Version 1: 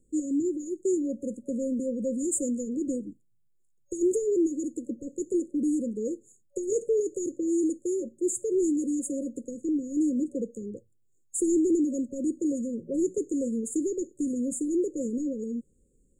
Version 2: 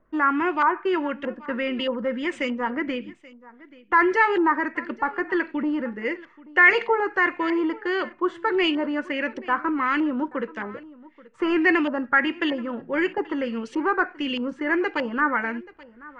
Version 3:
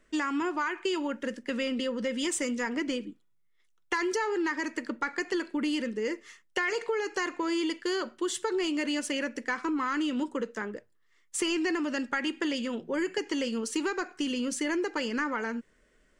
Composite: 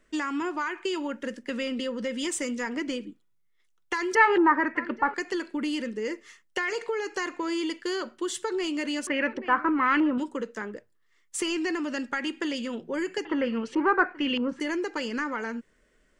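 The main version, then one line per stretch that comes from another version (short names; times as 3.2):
3
4.15–5.14 from 2
9.07–10.18 from 2
13.25–14.6 from 2
not used: 1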